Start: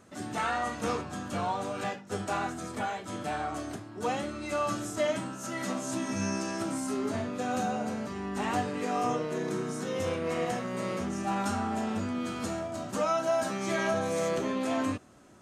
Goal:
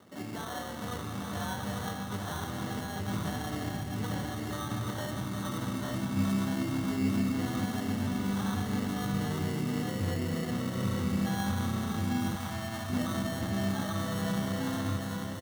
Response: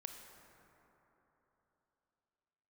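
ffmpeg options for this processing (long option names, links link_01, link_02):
-filter_complex "[0:a]aphaser=in_gain=1:out_gain=1:delay=1.2:decay=0.41:speed=0.31:type=triangular,acrossover=split=130|2900[link_01][link_02][link_03];[link_02]alimiter=level_in=2.5dB:limit=-24dB:level=0:latency=1:release=225,volume=-2.5dB[link_04];[link_01][link_04][link_03]amix=inputs=3:normalize=0[link_05];[1:a]atrim=start_sample=2205,asetrate=34839,aresample=44100[link_06];[link_05][link_06]afir=irnorm=-1:irlink=0,acrusher=samples=18:mix=1:aa=0.000001,asplit=2[link_07][link_08];[link_08]aecho=0:1:847:0.596[link_09];[link_07][link_09]amix=inputs=2:normalize=0,asubboost=boost=4:cutoff=200,highpass=100,asettb=1/sr,asplit=3[link_10][link_11][link_12];[link_10]atrim=end=12.364[link_13];[link_11]atrim=start=12.36:end=12.9,asetpts=PTS-STARTPTS,afade=type=in:duration=0.004:curve=qsin,afade=type=out:start_time=0.536:duration=0.004:curve=qsin,lowshelf=frequency=600:width_type=q:width=1.5:gain=-6.5[link_14];[link_12]atrim=start=12.896[link_15];[link_13][link_14]acrossfade=duration=0.004:curve1=hsin:curve2=qsin[link_16];[link_16][link_15]acrossfade=duration=0.004:curve1=qsin:curve2=hsin"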